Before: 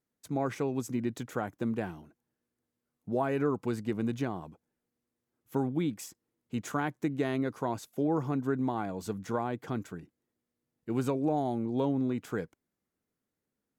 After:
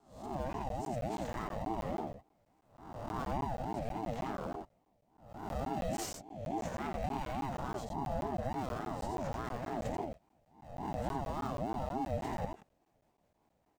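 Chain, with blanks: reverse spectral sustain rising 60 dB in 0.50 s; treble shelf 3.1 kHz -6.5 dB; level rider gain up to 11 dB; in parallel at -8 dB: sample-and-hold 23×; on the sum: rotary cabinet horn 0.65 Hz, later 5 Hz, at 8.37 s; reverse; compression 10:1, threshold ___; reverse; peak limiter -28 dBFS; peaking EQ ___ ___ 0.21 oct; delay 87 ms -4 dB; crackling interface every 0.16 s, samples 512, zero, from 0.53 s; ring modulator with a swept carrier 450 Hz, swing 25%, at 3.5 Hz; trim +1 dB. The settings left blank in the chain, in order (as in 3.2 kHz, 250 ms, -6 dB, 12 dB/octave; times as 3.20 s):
-30 dBFS, 11 kHz, -12 dB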